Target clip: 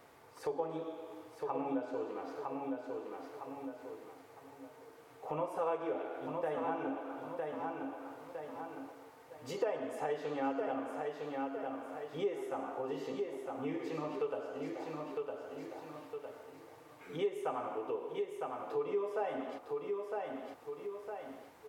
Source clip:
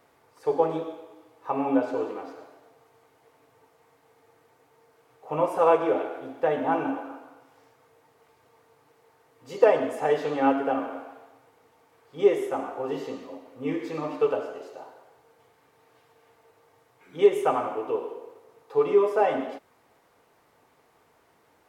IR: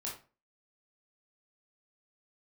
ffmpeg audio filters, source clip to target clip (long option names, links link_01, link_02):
-af "aecho=1:1:958|1916|2874:0.398|0.0995|0.0249,acompressor=threshold=-43dB:ratio=2.5,volume=2dB"